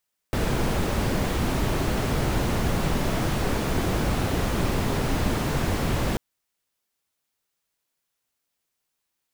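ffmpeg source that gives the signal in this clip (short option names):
-f lavfi -i "anoisesrc=c=brown:a=0.313:d=5.84:r=44100:seed=1"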